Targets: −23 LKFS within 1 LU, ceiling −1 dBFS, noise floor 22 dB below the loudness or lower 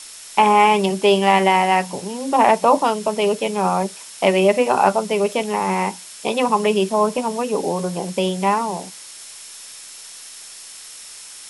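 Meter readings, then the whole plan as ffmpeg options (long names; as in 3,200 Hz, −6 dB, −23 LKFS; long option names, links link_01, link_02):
interfering tone 5,400 Hz; level of the tone −46 dBFS; background noise floor −39 dBFS; target noise floor −41 dBFS; integrated loudness −18.5 LKFS; sample peak −1.0 dBFS; target loudness −23.0 LKFS
→ -af "bandreject=frequency=5400:width=30"
-af "afftdn=noise_reduction=6:noise_floor=-39"
-af "volume=-4.5dB"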